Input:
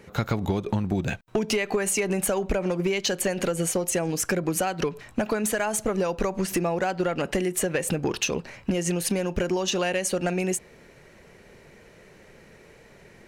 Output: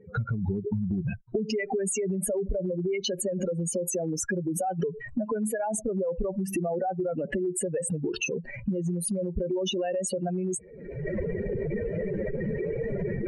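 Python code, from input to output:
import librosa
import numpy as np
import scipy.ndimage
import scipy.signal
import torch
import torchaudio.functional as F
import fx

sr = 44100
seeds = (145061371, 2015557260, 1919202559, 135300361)

y = fx.spec_expand(x, sr, power=3.1)
y = fx.recorder_agc(y, sr, target_db=-19.5, rise_db_per_s=51.0, max_gain_db=30)
y = F.gain(torch.from_numpy(y), -3.5).numpy()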